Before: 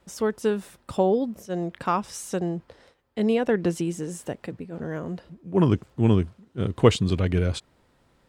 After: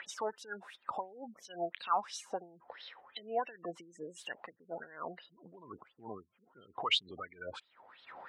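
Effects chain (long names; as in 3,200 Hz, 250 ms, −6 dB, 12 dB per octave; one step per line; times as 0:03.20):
gate on every frequency bin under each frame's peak −25 dB strong
low-shelf EQ 220 Hz −5 dB
upward compression, threshold −30 dBFS
brickwall limiter −22 dBFS, peak gain reduction 16 dB
LFO wah 2.9 Hz 710–4,000 Hz, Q 7.1
level +10 dB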